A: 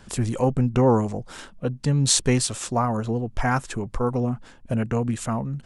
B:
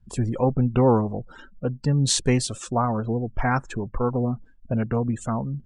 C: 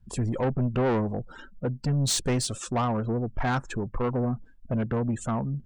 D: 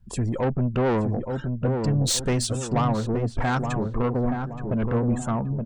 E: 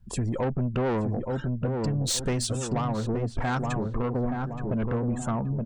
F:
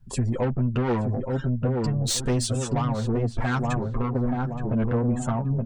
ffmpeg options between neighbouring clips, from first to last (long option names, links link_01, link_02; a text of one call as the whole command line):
ffmpeg -i in.wav -af "afftdn=noise_reduction=31:noise_floor=-38,highshelf=frequency=9600:gain=-11.5" out.wav
ffmpeg -i in.wav -af "asoftclip=type=tanh:threshold=-20.5dB" out.wav
ffmpeg -i in.wav -filter_complex "[0:a]asplit=2[link_01][link_02];[link_02]adelay=873,lowpass=frequency=840:poles=1,volume=-4dB,asplit=2[link_03][link_04];[link_04]adelay=873,lowpass=frequency=840:poles=1,volume=0.46,asplit=2[link_05][link_06];[link_06]adelay=873,lowpass=frequency=840:poles=1,volume=0.46,asplit=2[link_07][link_08];[link_08]adelay=873,lowpass=frequency=840:poles=1,volume=0.46,asplit=2[link_09][link_10];[link_10]adelay=873,lowpass=frequency=840:poles=1,volume=0.46,asplit=2[link_11][link_12];[link_12]adelay=873,lowpass=frequency=840:poles=1,volume=0.46[link_13];[link_01][link_03][link_05][link_07][link_09][link_11][link_13]amix=inputs=7:normalize=0,volume=2dB" out.wav
ffmpeg -i in.wav -af "acompressor=threshold=-24dB:ratio=6" out.wav
ffmpeg -i in.wav -af "flanger=delay=7.2:depth=1.7:regen=-2:speed=0.73:shape=triangular,volume=4.5dB" out.wav